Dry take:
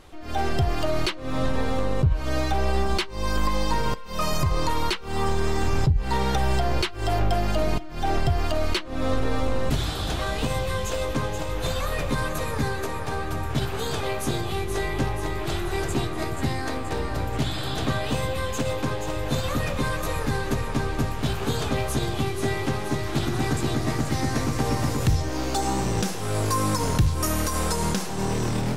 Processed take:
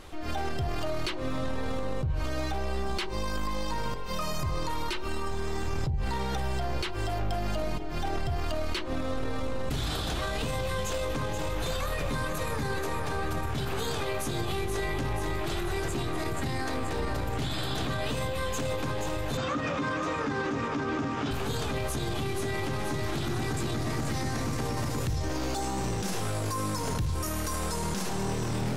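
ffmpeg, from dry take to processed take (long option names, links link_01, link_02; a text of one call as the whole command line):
ffmpeg -i in.wav -filter_complex "[0:a]asettb=1/sr,asplit=3[link_01][link_02][link_03];[link_01]atrim=end=4.884[link_04];[link_02]atrim=start=4.88:end=5.32,asetpts=PTS-STARTPTS,afade=type=in:duration=0.004:curve=qsin,afade=type=out:start_time=0.436:duration=0.004:curve=qsin,aecho=1:1:3.3:0.65,atrim=end_sample=19404[link_05];[link_03]atrim=start=5.316[link_06];[link_04][link_05]acrossfade=duration=0.004:curve1=hsin:curve2=qsin[link_07];[link_07][link_06]acrossfade=duration=0.004:curve1=qsin:curve2=hsin,asettb=1/sr,asplit=3[link_08][link_09][link_10];[link_08]atrim=end=19.374[link_11];[link_09]atrim=start=19.37:end=21.31,asetpts=PTS-STARTPTS,afade=type=in:duration=0.004:curve=qsin,afade=type=out:start_time=1.936:duration=0.004:curve=qsin,highpass=150,equalizer=frequency=280:width_type=q:width=4:gain=10,equalizer=frequency=1300:width_type=q:width=4:gain=6,equalizer=frequency=4200:width_type=q:width=4:gain=-7,lowpass=frequency=6300:width=0.5412,lowpass=frequency=6300:width=1.3066[link_12];[link_10]atrim=start=21.306[link_13];[link_11][link_12]acrossfade=duration=0.004:curve1=hsin:curve2=qsin[link_14];[link_14][link_13]acrossfade=duration=0.004:curve1=qsin:curve2=hsin,bandreject=frequency=45.96:width_type=h:width=4,bandreject=frequency=91.92:width_type=h:width=4,bandreject=frequency=137.88:width_type=h:width=4,bandreject=frequency=183.84:width_type=h:width=4,bandreject=frequency=229.8:width_type=h:width=4,bandreject=frequency=275.76:width_type=h:width=4,bandreject=frequency=321.72:width_type=h:width=4,bandreject=frequency=367.68:width_type=h:width=4,bandreject=frequency=413.64:width_type=h:width=4,bandreject=frequency=459.6:width_type=h:width=4,bandreject=frequency=505.56:width_type=h:width=4,bandreject=frequency=551.52:width_type=h:width=4,bandreject=frequency=597.48:width_type=h:width=4,bandreject=frequency=643.44:width_type=h:width=4,bandreject=frequency=689.4:width_type=h:width=4,bandreject=frequency=735.36:width_type=h:width=4,bandreject=frequency=781.32:width_type=h:width=4,bandreject=frequency=827.28:width_type=h:width=4,bandreject=frequency=873.24:width_type=h:width=4,bandreject=frequency=919.2:width_type=h:width=4,bandreject=frequency=965.16:width_type=h:width=4,bandreject=frequency=1011.12:width_type=h:width=4,acompressor=threshold=-23dB:ratio=6,alimiter=level_in=1.5dB:limit=-24dB:level=0:latency=1:release=32,volume=-1.5dB,volume=3dB" out.wav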